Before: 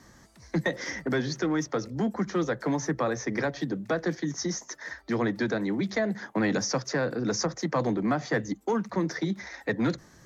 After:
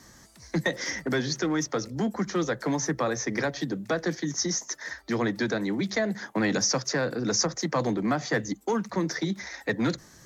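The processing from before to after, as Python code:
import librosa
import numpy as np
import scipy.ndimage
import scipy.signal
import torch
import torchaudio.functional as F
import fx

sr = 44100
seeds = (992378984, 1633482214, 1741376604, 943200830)

y = fx.high_shelf(x, sr, hz=3500.0, db=8.5)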